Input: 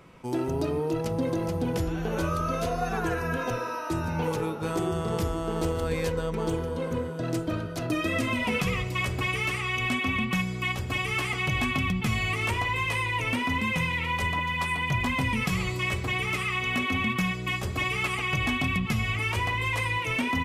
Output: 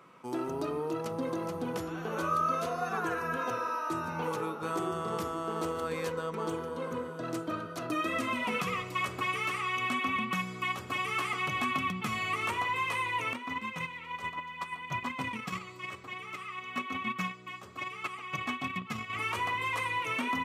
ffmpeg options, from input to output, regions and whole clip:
ffmpeg -i in.wav -filter_complex "[0:a]asettb=1/sr,asplit=3[link_01][link_02][link_03];[link_01]atrim=end=13.334[link_04];[link_02]atrim=start=13.33:end=19.13,asetpts=PTS-STARTPTS,afade=type=in:duration=0.004:curve=qsin,afade=type=out:start_time=5.796:duration=0.004:curve=qsin,equalizer=frequency=11000:width_type=o:width=0.31:gain=-10,agate=range=-10dB:threshold=-27dB:ratio=16:release=100:detection=peak[link_05];[link_03]atrim=start=19.126[link_06];[link_04][link_05]acrossfade=duration=0.004:curve1=hsin:curve2=qsin[link_07];[link_07][link_06]acrossfade=duration=0.004:curve1=qsin:curve2=hsin,highpass=190,equalizer=frequency=1200:width=2.8:gain=9.5,bandreject=frequency=5000:width=25,volume=-5.5dB" out.wav

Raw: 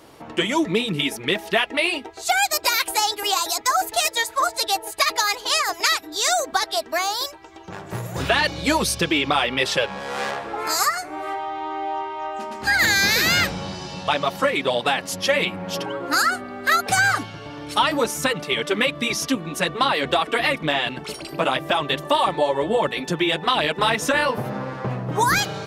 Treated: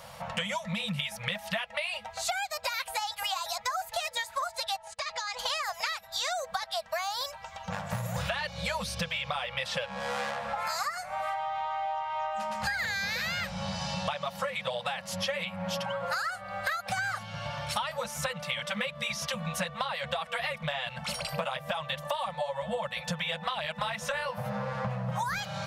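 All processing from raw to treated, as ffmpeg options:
ffmpeg -i in.wav -filter_complex "[0:a]asettb=1/sr,asplit=3[link_01][link_02][link_03];[link_01]atrim=end=4.764[link_04];[link_02]atrim=start=4.76:end=5.39,asetpts=PTS-STARTPTS,afade=type=in:duration=0.004:curve=qsin,afade=type=out:start_time=0.626:duration=0.004:curve=qsin,lowpass=frequency=7300:width=0.5412,lowpass=frequency=7300:width=1.3066,agate=range=-27dB:threshold=-40dB:ratio=16:release=100:detection=peak,acompressor=threshold=-35dB:ratio=4:attack=3.2:release=140:knee=1:detection=peak[link_05];[link_03]atrim=start=5.386[link_06];[link_04][link_05]acrossfade=duration=0.004:curve1=hsin:curve2=qsin[link_07];[link_07][link_06]acrossfade=duration=0.004:curve1=qsin:curve2=hsin,acrossover=split=4500[link_08][link_09];[link_09]acompressor=threshold=-33dB:ratio=4:attack=1:release=60[link_10];[link_08][link_10]amix=inputs=2:normalize=0,afftfilt=real='re*(1-between(b*sr/4096,220,480))':imag='im*(1-between(b*sr/4096,220,480))':win_size=4096:overlap=0.75,acompressor=threshold=-32dB:ratio=10,volume=2.5dB" out.wav

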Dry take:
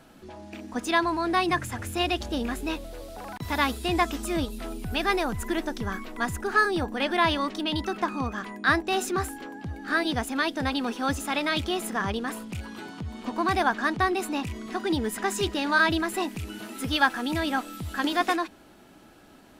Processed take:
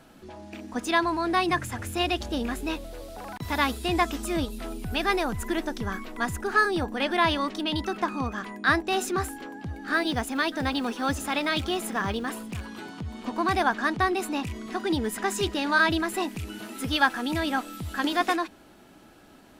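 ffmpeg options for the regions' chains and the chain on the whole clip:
ffmpeg -i in.wav -filter_complex "[0:a]asettb=1/sr,asplit=3[link_01][link_02][link_03];[link_01]atrim=end=9.934[link_04];[link_02]atrim=start=9.93:end=12.63,asetpts=PTS-STARTPTS,afade=type=in:duration=0.004:curve=qsin,afade=type=out:start_time=2.696:duration=0.004:curve=qsin,acrusher=bits=9:mode=log:mix=0:aa=0.000001,aecho=1:1:589:0.0944,atrim=end_sample=119070[link_05];[link_03]atrim=start=12.626[link_06];[link_04][link_05]acrossfade=duration=0.004:curve1=hsin:curve2=qsin[link_07];[link_07][link_06]acrossfade=duration=0.004:curve1=qsin:curve2=hsin" out.wav

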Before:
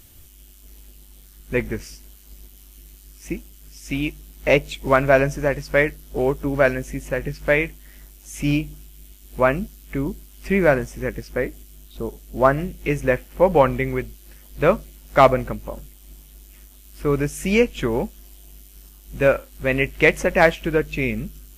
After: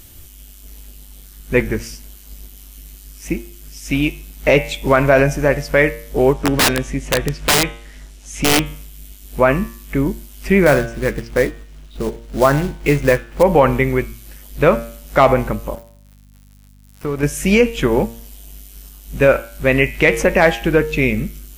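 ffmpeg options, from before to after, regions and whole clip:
ffmpeg -i in.wav -filter_complex "[0:a]asettb=1/sr,asplit=3[link_01][link_02][link_03];[link_01]atrim=end=6.334[link_04];[link_02]atrim=start=6.33:end=8.66,asetpts=PTS-STARTPTS,afade=type=in:duration=0.004:curve=qsin,afade=type=out:start_time=2.326:duration=0.004:curve=qsin,lowpass=7500,aeval=exprs='(mod(5.31*val(0)+1,2)-1)/5.31':channel_layout=same[link_05];[link_03]atrim=start=8.656[link_06];[link_04][link_05]acrossfade=duration=0.004:curve1=hsin:curve2=qsin[link_07];[link_07][link_06]acrossfade=duration=0.004:curve1=qsin:curve2=hsin,asettb=1/sr,asplit=3[link_08][link_09][link_10];[link_08]atrim=end=10.664[link_11];[link_09]atrim=start=10.66:end=13.43,asetpts=PTS-STARTPTS,afade=type=in:duration=0.004:curve=qsin,afade=type=out:start_time=2.766:duration=0.004:curve=qsin,adynamicsmooth=sensitivity=7.5:basefreq=3100,acrusher=bits=4:mode=log:mix=0:aa=0.000001,asplit=2[link_12][link_13];[link_13]adelay=14,volume=-12.5dB[link_14];[link_12][link_14]amix=inputs=2:normalize=0,atrim=end_sample=122157[link_15];[link_10]atrim=start=13.426[link_16];[link_11][link_15]acrossfade=duration=0.004:curve1=hsin:curve2=qsin[link_17];[link_17][link_16]acrossfade=duration=0.004:curve1=qsin:curve2=hsin,asettb=1/sr,asplit=3[link_18][link_19][link_20];[link_18]atrim=end=15.754[link_21];[link_19]atrim=start=15.75:end=17.23,asetpts=PTS-STARTPTS,afade=type=in:duration=0.004:curve=qsin,afade=type=out:start_time=1.476:duration=0.004:curve=qsin,aeval=exprs='sgn(val(0))*max(abs(val(0))-0.0178,0)':channel_layout=same,acompressor=threshold=-26dB:ratio=3:attack=3.2:release=140:knee=1:detection=peak,aeval=exprs='val(0)+0.00251*(sin(2*PI*50*n/s)+sin(2*PI*2*50*n/s)/2+sin(2*PI*3*50*n/s)/3+sin(2*PI*4*50*n/s)/4+sin(2*PI*5*50*n/s)/5)':channel_layout=same[link_22];[link_20]atrim=start=17.226[link_23];[link_21][link_22]acrossfade=duration=0.004:curve1=hsin:curve2=qsin[link_24];[link_24][link_23]acrossfade=duration=0.004:curve1=qsin:curve2=hsin,bandreject=frequency=115.6:width_type=h:width=4,bandreject=frequency=231.2:width_type=h:width=4,bandreject=frequency=346.8:width_type=h:width=4,bandreject=frequency=462.4:width_type=h:width=4,bandreject=frequency=578:width_type=h:width=4,bandreject=frequency=693.6:width_type=h:width=4,bandreject=frequency=809.2:width_type=h:width=4,bandreject=frequency=924.8:width_type=h:width=4,bandreject=frequency=1040.4:width_type=h:width=4,bandreject=frequency=1156:width_type=h:width=4,bandreject=frequency=1271.6:width_type=h:width=4,bandreject=frequency=1387.2:width_type=h:width=4,bandreject=frequency=1502.8:width_type=h:width=4,bandreject=frequency=1618.4:width_type=h:width=4,bandreject=frequency=1734:width_type=h:width=4,bandreject=frequency=1849.6:width_type=h:width=4,bandreject=frequency=1965.2:width_type=h:width=4,bandreject=frequency=2080.8:width_type=h:width=4,bandreject=frequency=2196.4:width_type=h:width=4,bandreject=frequency=2312:width_type=h:width=4,bandreject=frequency=2427.6:width_type=h:width=4,bandreject=frequency=2543.2:width_type=h:width=4,bandreject=frequency=2658.8:width_type=h:width=4,bandreject=frequency=2774.4:width_type=h:width=4,bandreject=frequency=2890:width_type=h:width=4,bandreject=frequency=3005.6:width_type=h:width=4,bandreject=frequency=3121.2:width_type=h:width=4,bandreject=frequency=3236.8:width_type=h:width=4,bandreject=frequency=3352.4:width_type=h:width=4,bandreject=frequency=3468:width_type=h:width=4,bandreject=frequency=3583.6:width_type=h:width=4,bandreject=frequency=3699.2:width_type=h:width=4,alimiter=level_in=8dB:limit=-1dB:release=50:level=0:latency=1,volume=-1dB" out.wav

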